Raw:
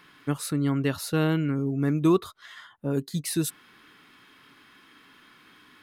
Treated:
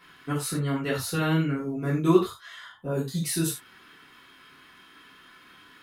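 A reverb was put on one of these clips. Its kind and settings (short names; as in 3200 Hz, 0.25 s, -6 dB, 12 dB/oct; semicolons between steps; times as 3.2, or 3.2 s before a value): non-linear reverb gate 0.12 s falling, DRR -7.5 dB; gain -6 dB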